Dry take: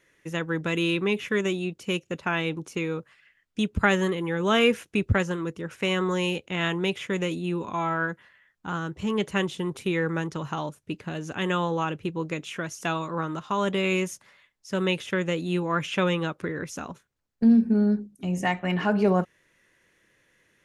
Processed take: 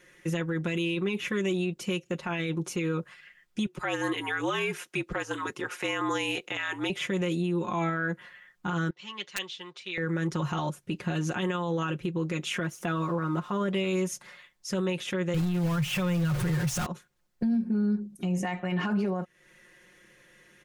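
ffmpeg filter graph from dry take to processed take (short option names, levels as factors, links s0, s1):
-filter_complex "[0:a]asettb=1/sr,asplit=3[s0][s1][s2];[s0]atrim=end=3.664[s3];[s1]atrim=start=3.66:end=6.9,asetpts=PTS-STARTPTS,afade=t=in:d=0.004:c=qsin,afade=t=out:st=3.236:d=0.004:c=qsin,highpass=440,afreqshift=-56[s4];[s2]atrim=start=6.896[s5];[s3][s4]acrossfade=d=0.004:c1=hsin:c2=qsin[s6];[s6][s5]acrossfade=d=0.004:c1=qsin:c2=hsin,asettb=1/sr,asplit=3[s7][s8][s9];[s7]atrim=end=8.904[s10];[s8]atrim=start=8.9:end=9.98,asetpts=PTS-STARTPTS,afade=t=in:d=0.004:c=qsin,afade=t=out:st=1.076:d=0.004:c=qsin,lowpass=f=4600:w=0.5412,lowpass=f=4600:w=1.3066,aderivative,aeval=exprs='(mod(20*val(0)+1,2)-1)/20':c=same[s11];[s9]atrim=start=9.976[s12];[s10][s11]acrossfade=d=0.004:c1=hsin:c2=qsin[s13];[s13][s12]acrossfade=d=0.004:c1=qsin:c2=hsin,asettb=1/sr,asplit=3[s14][s15][s16];[s14]atrim=end=12.634[s17];[s15]atrim=start=12.63:end=13.73,asetpts=PTS-STARTPTS,afade=t=in:d=0.004:c=qsin,afade=t=out:st=1.096:d=0.004:c=qsin,equalizer=f=5500:w=0.59:g=-11.5,aeval=exprs='sgn(val(0))*max(abs(val(0))-0.001,0)':c=same[s18];[s16]atrim=start=13.726[s19];[s17][s18]acrossfade=d=0.004:c1=hsin:c2=qsin[s20];[s20][s19]acrossfade=d=0.004:c1=qsin:c2=hsin,asettb=1/sr,asplit=3[s21][s22][s23];[s21]atrim=end=15.344[s24];[s22]atrim=start=15.34:end=16.86,asetpts=PTS-STARTPTS,afade=t=in:d=0.004:c=qsin,afade=t=out:st=1.516:d=0.004:c=qsin,aeval=exprs='val(0)+0.5*0.0562*sgn(val(0))':c=same,lowshelf=f=180:t=q:w=3:g=11[s25];[s23]atrim=start=16.856[s26];[s24][s25]acrossfade=d=0.004:c1=hsin:c2=qsin[s27];[s27][s26]acrossfade=d=0.004:c1=qsin:c2=hsin,aecho=1:1:5.6:0.81,acompressor=threshold=0.0355:ratio=5,alimiter=level_in=1.26:limit=0.0631:level=0:latency=1:release=18,volume=0.794,volume=1.78"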